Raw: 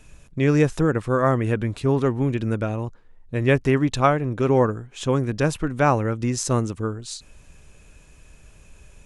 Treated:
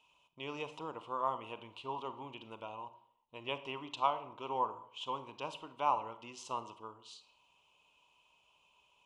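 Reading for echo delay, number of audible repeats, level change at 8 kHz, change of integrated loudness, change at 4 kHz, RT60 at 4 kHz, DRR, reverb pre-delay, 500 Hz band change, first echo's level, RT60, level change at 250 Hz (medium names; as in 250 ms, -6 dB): no echo, no echo, -24.0 dB, -17.5 dB, -8.5 dB, 0.45 s, 11.0 dB, 31 ms, -21.0 dB, no echo, 0.60 s, -28.0 dB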